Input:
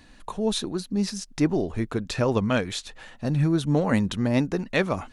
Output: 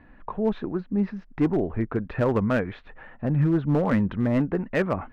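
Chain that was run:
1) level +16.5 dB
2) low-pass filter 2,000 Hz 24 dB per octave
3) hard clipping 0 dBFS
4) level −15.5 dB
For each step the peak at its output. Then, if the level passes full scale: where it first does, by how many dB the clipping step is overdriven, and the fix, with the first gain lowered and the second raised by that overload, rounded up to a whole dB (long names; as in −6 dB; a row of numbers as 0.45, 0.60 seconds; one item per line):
+8.5, +7.5, 0.0, −15.5 dBFS
step 1, 7.5 dB
step 1 +8.5 dB, step 4 −7.5 dB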